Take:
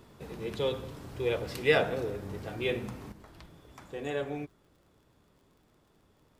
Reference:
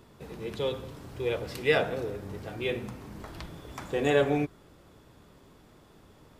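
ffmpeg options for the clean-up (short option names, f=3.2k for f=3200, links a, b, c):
-af "adeclick=t=4,asetnsamples=n=441:p=0,asendcmd='3.12 volume volume 10dB',volume=0dB"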